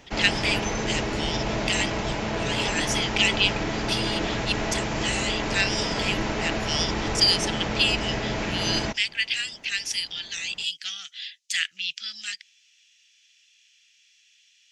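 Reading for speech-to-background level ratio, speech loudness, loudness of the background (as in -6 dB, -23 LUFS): 1.5 dB, -26.5 LUFS, -28.0 LUFS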